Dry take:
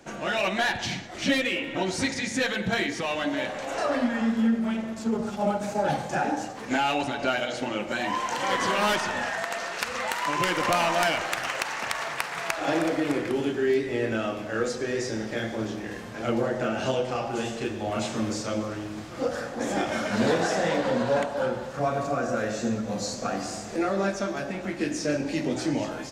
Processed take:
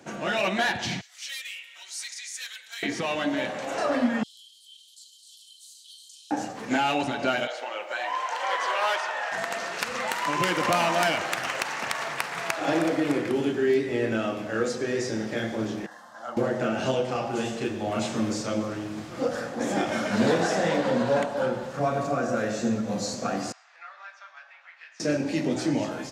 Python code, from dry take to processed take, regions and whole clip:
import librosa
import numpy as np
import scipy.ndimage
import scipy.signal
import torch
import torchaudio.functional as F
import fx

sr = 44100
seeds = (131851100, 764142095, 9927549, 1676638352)

y = fx.chain(x, sr, fx.highpass(hz=1200.0, slope=12),
    fx.differentiator(), at=(1.01, 2.83))
y = fx.chain(y, sr, fx.cheby_ripple_highpass(hz=3000.0, ripple_db=9),
    fx.env_flatten(amount_pct=50), at=(4.23, 6.31))
y = fx.chain(y, sr, fx.highpass(hz=550.0, slope=24),
    fx.high_shelf(hz=5300.0, db=-11.0),
    fx.quant_dither(seeds[0], bits=12, dither='none'), at=(7.47, 9.32))
y = fx.chain(y, sr, fx.highpass(hz=600.0, slope=12),
    fx.high_shelf(hz=4300.0, db=-8.5),
    fx.fixed_phaser(hz=1000.0, stages=4), at=(15.86, 16.37))
y = fx.chain(y, sr, fx.bessel_highpass(hz=1700.0, order=6),
    fx.spacing_loss(db_at_10k=37), at=(23.52, 25.0))
y = scipy.signal.sosfilt(scipy.signal.butter(2, 100.0, 'highpass', fs=sr, output='sos'), y)
y = fx.peak_eq(y, sr, hz=160.0, db=2.5, octaves=2.2)